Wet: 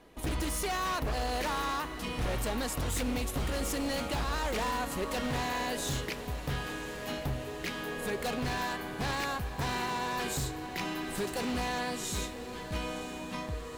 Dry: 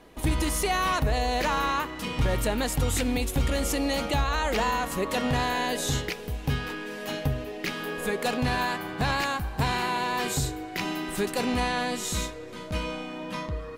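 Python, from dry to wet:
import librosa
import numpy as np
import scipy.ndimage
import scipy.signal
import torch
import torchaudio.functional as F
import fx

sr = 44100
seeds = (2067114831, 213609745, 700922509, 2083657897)

y = 10.0 ** (-22.0 / 20.0) * (np.abs((x / 10.0 ** (-22.0 / 20.0) + 3.0) % 4.0 - 2.0) - 1.0)
y = fx.echo_diffused(y, sr, ms=956, feedback_pct=69, wet_db=-13)
y = y * librosa.db_to_amplitude(-5.0)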